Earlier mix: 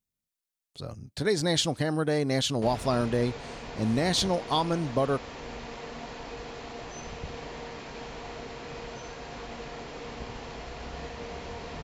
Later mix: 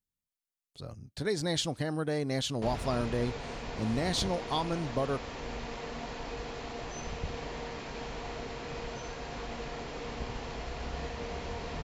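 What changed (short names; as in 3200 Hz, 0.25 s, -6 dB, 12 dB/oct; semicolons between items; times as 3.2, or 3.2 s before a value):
speech -5.5 dB; master: add low shelf 67 Hz +6 dB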